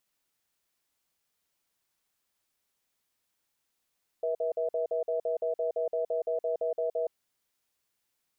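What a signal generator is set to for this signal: cadence 481 Hz, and 650 Hz, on 0.12 s, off 0.05 s, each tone -29.5 dBFS 2.89 s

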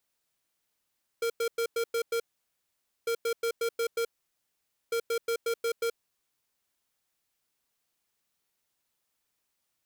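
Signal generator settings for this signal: beep pattern square 463 Hz, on 0.08 s, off 0.10 s, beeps 6, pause 0.87 s, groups 3, -28.5 dBFS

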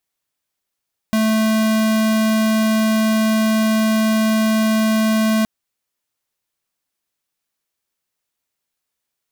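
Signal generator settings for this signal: tone square 219 Hz -16 dBFS 4.32 s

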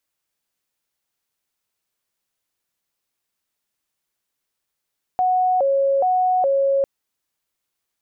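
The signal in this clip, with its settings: siren hi-lo 549–737 Hz 1.2/s sine -15 dBFS 1.65 s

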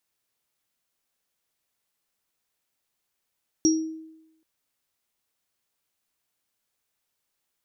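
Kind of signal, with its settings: sine partials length 0.78 s, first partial 319 Hz, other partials 5670 Hz, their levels -2.5 dB, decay 0.90 s, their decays 0.31 s, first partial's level -15.5 dB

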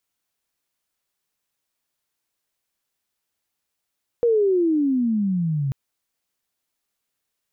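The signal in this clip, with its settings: gliding synth tone sine, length 1.49 s, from 484 Hz, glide -22.5 st, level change -6 dB, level -14.5 dB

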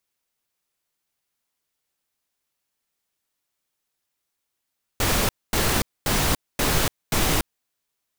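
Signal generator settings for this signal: noise bursts pink, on 0.29 s, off 0.24 s, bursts 5, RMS -21 dBFS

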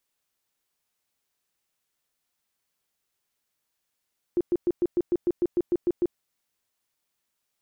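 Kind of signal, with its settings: tone bursts 350 Hz, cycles 13, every 0.15 s, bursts 12, -19 dBFS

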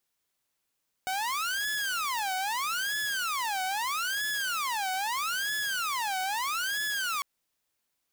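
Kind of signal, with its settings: siren wail 747–1710 Hz 0.78/s saw -26 dBFS 6.15 s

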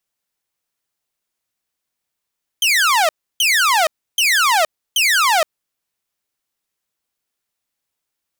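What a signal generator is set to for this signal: burst of laser zaps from 3200 Hz, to 600 Hz, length 0.47 s saw, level -9.5 dB, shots 4, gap 0.31 s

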